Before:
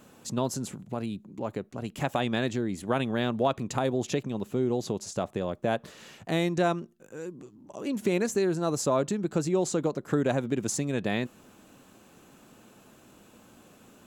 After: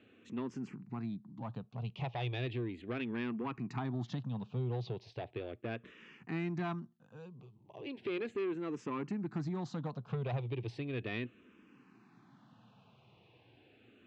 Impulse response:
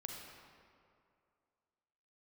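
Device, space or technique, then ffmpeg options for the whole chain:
barber-pole phaser into a guitar amplifier: -filter_complex "[0:a]asplit=2[link_01][link_02];[link_02]afreqshift=-0.36[link_03];[link_01][link_03]amix=inputs=2:normalize=1,asoftclip=type=tanh:threshold=-26dB,highpass=93,equalizer=frequency=120:width_type=q:width=4:gain=9,equalizer=frequency=570:width_type=q:width=4:gain=-8,equalizer=frequency=1400:width_type=q:width=4:gain=-3,equalizer=frequency=2500:width_type=q:width=4:gain=4,lowpass=frequency=3900:width=0.5412,lowpass=frequency=3900:width=1.3066,volume=-4.5dB"

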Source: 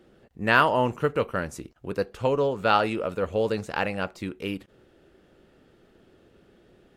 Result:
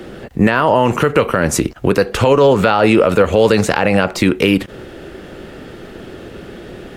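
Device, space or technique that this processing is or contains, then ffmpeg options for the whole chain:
mastering chain: -filter_complex "[0:a]equalizer=frequency=2000:width_type=o:width=0.77:gain=2,acrossover=split=130|960[link_01][link_02][link_03];[link_01]acompressor=threshold=-45dB:ratio=4[link_04];[link_02]acompressor=threshold=-25dB:ratio=4[link_05];[link_03]acompressor=threshold=-31dB:ratio=4[link_06];[link_04][link_05][link_06]amix=inputs=3:normalize=0,acompressor=threshold=-31dB:ratio=2,alimiter=level_in=25.5dB:limit=-1dB:release=50:level=0:latency=1,volume=-1dB"

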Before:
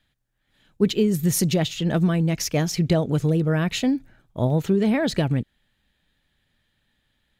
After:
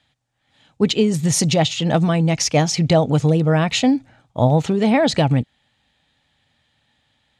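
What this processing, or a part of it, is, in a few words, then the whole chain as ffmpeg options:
car door speaker: -af "highpass=91,equalizer=frequency=190:width_type=q:width=4:gain=-7,equalizer=frequency=370:width_type=q:width=4:gain=-9,equalizer=frequency=800:width_type=q:width=4:gain=6,equalizer=frequency=1600:width_type=q:width=4:gain=-5,lowpass=frequency=8700:width=0.5412,lowpass=frequency=8700:width=1.3066,volume=7.5dB"

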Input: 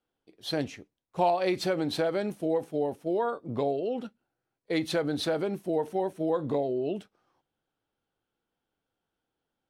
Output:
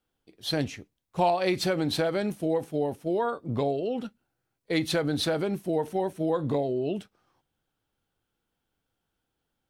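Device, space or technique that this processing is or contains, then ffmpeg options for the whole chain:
smiley-face EQ: -af "lowshelf=frequency=140:gain=6,equalizer=frequency=480:width_type=o:width=2.6:gain=-4,highshelf=frequency=9600:gain=3,volume=4dB"

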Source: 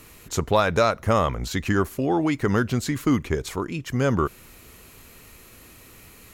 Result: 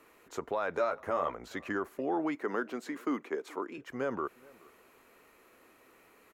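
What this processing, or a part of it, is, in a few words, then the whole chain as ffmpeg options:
DJ mixer with the lows and highs turned down: -filter_complex "[0:a]asettb=1/sr,asplit=3[link_01][link_02][link_03];[link_01]atrim=end=2.354[link_04];[link_02]atrim=start=2.35:end=3.78,asetpts=PTS-STARTPTS,afade=type=in:duration=0.004:curve=qsin,afade=type=out:start_time=1.426:duration=0.004:curve=qsin,highpass=frequency=200:width=0.5412,highpass=frequency=200:width=1.3066[link_05];[link_03]atrim=start=3.776[link_06];[link_04][link_05]acrossfade=duration=0.004:curve1=hsin:curve2=qsin[link_07];[link_07][link_06]acrossfade=duration=0.004:curve1=qsin:curve2=hsin,acrossover=split=280 2100:gain=0.0708 1 0.2[link_08][link_09][link_10];[link_08][link_09][link_10]amix=inputs=3:normalize=0,alimiter=limit=-16.5dB:level=0:latency=1:release=38,asettb=1/sr,asplit=3[link_11][link_12][link_13];[link_11]atrim=end=0.774[link_14];[link_12]atrim=start=0.77:end=1.32,asetpts=PTS-STARTPTS,afade=type=in:duration=0.004:curve=qsin,afade=type=out:start_time=0.546:duration=0.004:curve=qsin,asplit=2[link_15][link_16];[link_16]adelay=12,volume=-4.5dB[link_17];[link_15][link_17]amix=inputs=2:normalize=0,atrim=end_sample=24255[link_18];[link_13]atrim=start=1.316[link_19];[link_14][link_18]acrossfade=duration=0.004:curve1=hsin:curve2=qsin[link_20];[link_20][link_19]acrossfade=duration=0.004:curve1=qsin:curve2=hsin,asplit=2[link_21][link_22];[link_22]adelay=425.7,volume=-24dB,highshelf=frequency=4000:gain=-9.58[link_23];[link_21][link_23]amix=inputs=2:normalize=0,volume=-6dB"

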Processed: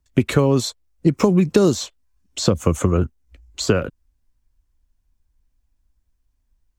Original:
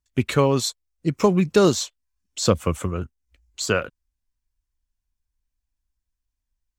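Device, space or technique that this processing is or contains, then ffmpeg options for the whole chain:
mastering chain: -filter_complex "[0:a]asettb=1/sr,asplit=3[link_01][link_02][link_03];[link_01]atrim=end=2.564[link_04];[link_02]atrim=start=2.56:end=2.97,asetpts=PTS-STARTPTS,afade=type=in:duration=0.004:curve=qsin,afade=type=out:start_time=0.406:duration=0.004:curve=qsin,equalizer=frequency=6600:width_type=o:width=0.23:gain=12[link_05];[link_03]atrim=start=2.966[link_06];[link_04][link_05]acrossfade=duration=0.004:curve1=hsin:curve2=qsin[link_07];[link_07][link_06]acrossfade=duration=0.004:curve1=qsin:curve2=hsin,equalizer=frequency=300:width_type=o:width=0.77:gain=1.5,acrossover=split=330|5500[link_08][link_09][link_10];[link_08]acompressor=threshold=-28dB:ratio=4[link_11];[link_09]acompressor=threshold=-29dB:ratio=4[link_12];[link_10]acompressor=threshold=-36dB:ratio=4[link_13];[link_11][link_12][link_13]amix=inputs=3:normalize=0,acompressor=threshold=-26dB:ratio=1.5,tiltshelf=frequency=1100:gain=4.5,alimiter=level_in=10dB:limit=-1dB:release=50:level=0:latency=1,volume=-1dB"

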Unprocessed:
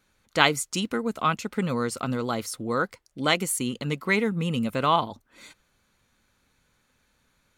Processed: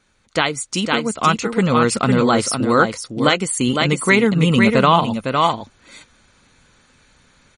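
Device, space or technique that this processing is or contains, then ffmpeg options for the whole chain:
low-bitrate web radio: -filter_complex "[0:a]asplit=3[link_01][link_02][link_03];[link_01]afade=type=out:start_time=3.26:duration=0.02[link_04];[link_02]highshelf=frequency=8300:gain=-4,afade=type=in:start_time=3.26:duration=0.02,afade=type=out:start_time=3.66:duration=0.02[link_05];[link_03]afade=type=in:start_time=3.66:duration=0.02[link_06];[link_04][link_05][link_06]amix=inputs=3:normalize=0,aecho=1:1:507:0.473,dynaudnorm=framelen=310:gausssize=5:maxgain=7dB,alimiter=limit=-8dB:level=0:latency=1:release=327,volume=6.5dB" -ar 44100 -c:a libmp3lame -b:a 40k

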